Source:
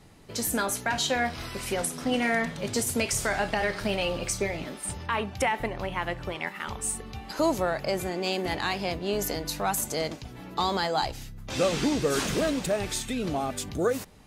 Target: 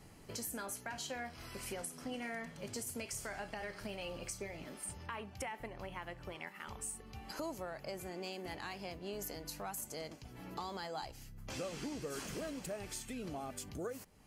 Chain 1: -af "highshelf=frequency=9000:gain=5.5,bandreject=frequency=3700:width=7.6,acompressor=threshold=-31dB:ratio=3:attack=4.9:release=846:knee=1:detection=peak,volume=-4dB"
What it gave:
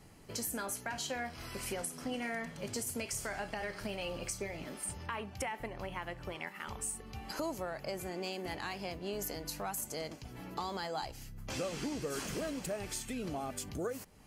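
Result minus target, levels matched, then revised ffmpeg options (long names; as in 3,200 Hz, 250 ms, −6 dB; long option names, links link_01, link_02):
downward compressor: peak gain reduction −4.5 dB
-af "highshelf=frequency=9000:gain=5.5,bandreject=frequency=3700:width=7.6,acompressor=threshold=-37.5dB:ratio=3:attack=4.9:release=846:knee=1:detection=peak,volume=-4dB"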